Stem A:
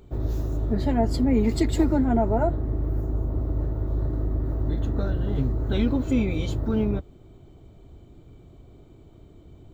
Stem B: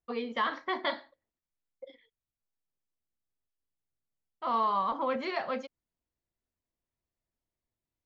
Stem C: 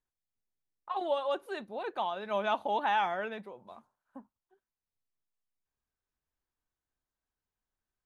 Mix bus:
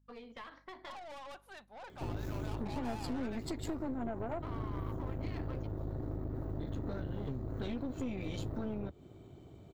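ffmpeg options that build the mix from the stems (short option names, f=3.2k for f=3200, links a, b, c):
-filter_complex "[0:a]highpass=90,acompressor=threshold=-32dB:ratio=8,adelay=1900,volume=0.5dB[a];[1:a]acompressor=threshold=-34dB:ratio=4,aeval=exprs='clip(val(0),-1,0.0168)':c=same,aeval=exprs='val(0)+0.00141*(sin(2*PI*50*n/s)+sin(2*PI*2*50*n/s)/2+sin(2*PI*3*50*n/s)/3+sin(2*PI*4*50*n/s)/4+sin(2*PI*5*50*n/s)/5)':c=same,volume=-9dB[b];[2:a]lowshelf=f=550:t=q:w=1.5:g=-10.5,aeval=exprs='(tanh(100*val(0)+0.25)-tanh(0.25))/100':c=same,volume=-3.5dB[c];[a][b][c]amix=inputs=3:normalize=0,aeval=exprs='(tanh(39.8*val(0)+0.6)-tanh(0.6))/39.8':c=same"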